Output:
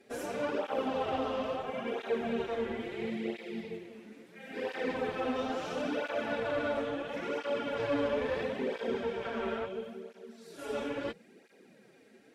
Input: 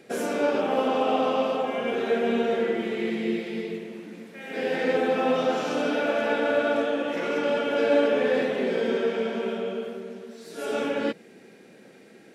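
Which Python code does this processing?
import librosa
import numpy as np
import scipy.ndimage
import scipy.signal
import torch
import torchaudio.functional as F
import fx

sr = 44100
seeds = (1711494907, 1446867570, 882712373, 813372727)

y = fx.peak_eq(x, sr, hz=1200.0, db=fx.line((9.22, 7.5), (9.65, 13.5)), octaves=1.6, at=(9.22, 9.65), fade=0.02)
y = fx.tube_stage(y, sr, drive_db=18.0, bias=0.6)
y = fx.flanger_cancel(y, sr, hz=0.74, depth_ms=6.6)
y = F.gain(torch.from_numpy(y), -3.0).numpy()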